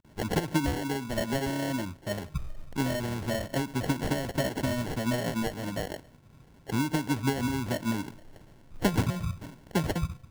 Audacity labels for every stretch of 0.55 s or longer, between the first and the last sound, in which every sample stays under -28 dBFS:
5.940000	6.700000	silence
8.020000	8.830000	silence